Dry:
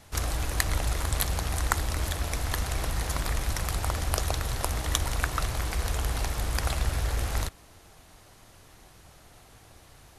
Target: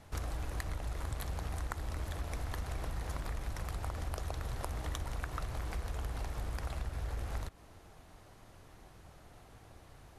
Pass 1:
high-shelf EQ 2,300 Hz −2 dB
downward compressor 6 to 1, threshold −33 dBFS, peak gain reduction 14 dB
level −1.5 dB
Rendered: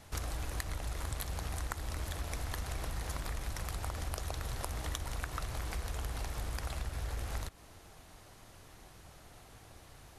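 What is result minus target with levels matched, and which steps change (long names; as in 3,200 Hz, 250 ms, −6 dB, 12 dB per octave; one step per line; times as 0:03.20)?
4,000 Hz band +4.0 dB
change: high-shelf EQ 2,300 Hz −9.5 dB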